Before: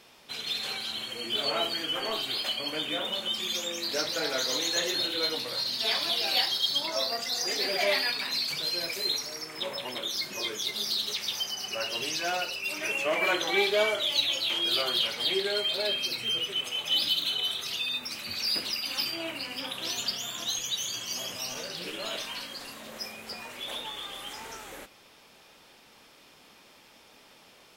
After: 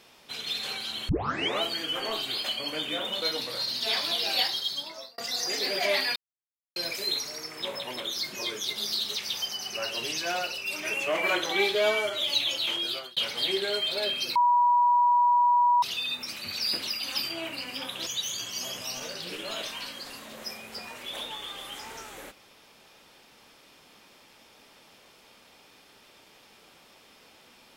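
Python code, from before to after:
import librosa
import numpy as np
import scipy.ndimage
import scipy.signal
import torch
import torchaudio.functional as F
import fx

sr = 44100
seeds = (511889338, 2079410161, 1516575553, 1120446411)

y = fx.edit(x, sr, fx.tape_start(start_s=1.09, length_s=0.53),
    fx.cut(start_s=3.22, length_s=1.98),
    fx.fade_out_span(start_s=6.39, length_s=0.77),
    fx.silence(start_s=8.14, length_s=0.6),
    fx.stretch_span(start_s=13.73, length_s=0.31, factor=1.5),
    fx.fade_out_span(start_s=14.54, length_s=0.45),
    fx.bleep(start_s=16.18, length_s=1.47, hz=969.0, db=-18.0),
    fx.cut(start_s=19.89, length_s=0.72), tone=tone)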